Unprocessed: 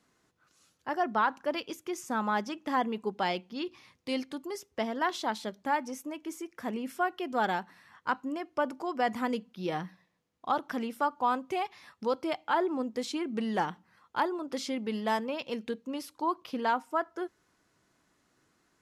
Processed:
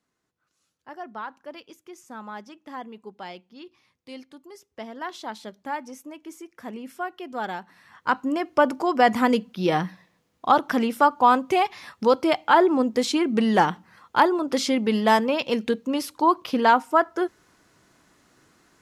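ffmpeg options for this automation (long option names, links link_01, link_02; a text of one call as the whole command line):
ffmpeg -i in.wav -af "volume=11dB,afade=type=in:start_time=4.44:duration=1.1:silence=0.473151,afade=type=in:start_time=7.61:duration=0.86:silence=0.237137" out.wav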